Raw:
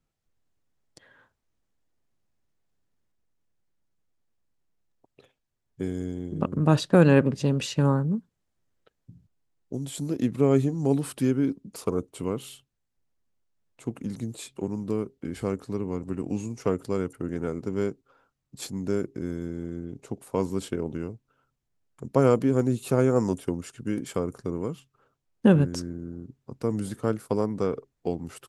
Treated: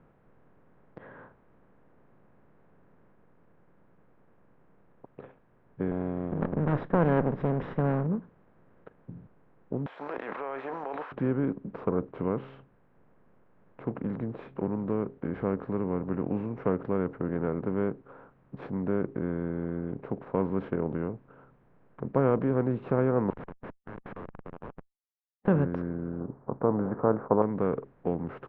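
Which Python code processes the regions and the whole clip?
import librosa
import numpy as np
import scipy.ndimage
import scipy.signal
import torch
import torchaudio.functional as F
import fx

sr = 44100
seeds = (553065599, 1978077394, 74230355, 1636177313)

y = fx.chain(x, sr, fx.lower_of_two(delay_ms=0.57),
    fx.peak_eq(hz=1400.0, db=-3.0, octaves=0.83), at=(5.91, 8.07))
y = fx.chain(y, sr, fx.highpass(hz=830.0, slope=24),
    fx.peak_eq(hz=1200.0, db=-2.5, octaves=0.65),
    fx.env_flatten(amount_pct=100), at=(9.86, 11.12))
y = fx.chain(y, sr, fx.highpass(hz=850.0, slope=24),
    fx.schmitt(flips_db=-41.5), at=(23.3, 25.48))
y = fx.chain(y, sr, fx.lowpass(hz=1200.0, slope=24),
    fx.peak_eq(hz=890.0, db=13.0, octaves=2.2), at=(26.2, 27.42))
y = fx.bin_compress(y, sr, power=0.6)
y = scipy.signal.sosfilt(scipy.signal.butter(4, 2000.0, 'lowpass', fs=sr, output='sos'), y)
y = y * librosa.db_to_amplitude(-6.5)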